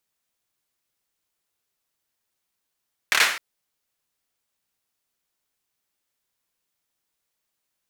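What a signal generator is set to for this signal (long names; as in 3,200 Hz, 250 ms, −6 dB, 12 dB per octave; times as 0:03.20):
synth clap length 0.26 s, apart 27 ms, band 1,800 Hz, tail 0.49 s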